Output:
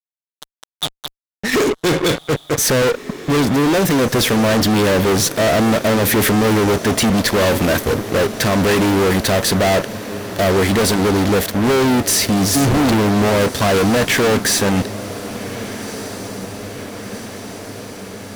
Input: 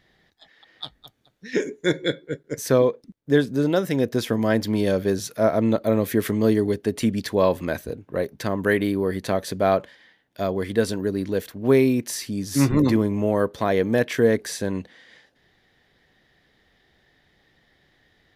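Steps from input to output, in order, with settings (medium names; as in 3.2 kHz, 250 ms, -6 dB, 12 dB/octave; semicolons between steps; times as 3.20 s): fuzz box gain 40 dB, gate -41 dBFS; echo that smears into a reverb 1543 ms, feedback 70%, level -14.5 dB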